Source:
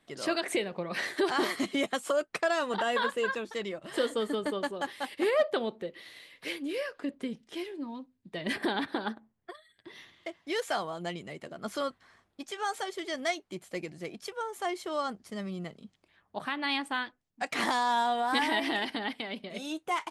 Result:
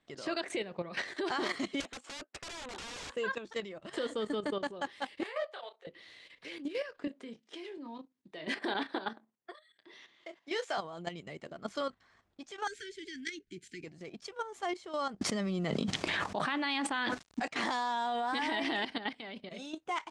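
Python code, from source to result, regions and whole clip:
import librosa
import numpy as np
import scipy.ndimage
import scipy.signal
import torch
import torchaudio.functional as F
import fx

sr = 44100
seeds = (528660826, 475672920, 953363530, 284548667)

y = fx.chain(x, sr, fx.brickwall_highpass(low_hz=220.0),
    fx.high_shelf(hz=5700.0, db=-11.5),
    fx.overflow_wrap(gain_db=29.0), at=(1.8, 3.15))
y = fx.chain(y, sr, fx.highpass(hz=620.0, slope=24),
    fx.detune_double(cents=43), at=(5.23, 5.87))
y = fx.chain(y, sr, fx.highpass(hz=280.0, slope=12),
    fx.doubler(ms=26.0, db=-10.0), at=(7.07, 10.78))
y = fx.chain(y, sr, fx.cheby1_bandstop(low_hz=420.0, high_hz=1500.0, order=5),
    fx.band_squash(depth_pct=70), at=(12.67, 13.84))
y = fx.chain(y, sr, fx.highpass(hz=140.0, slope=12),
    fx.quant_companded(bits=8),
    fx.env_flatten(amount_pct=100), at=(15.21, 17.48))
y = scipy.signal.sosfilt(scipy.signal.butter(4, 7800.0, 'lowpass', fs=sr, output='sos'), y)
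y = fx.peak_eq(y, sr, hz=61.0, db=5.0, octaves=1.1)
y = fx.level_steps(y, sr, step_db=11)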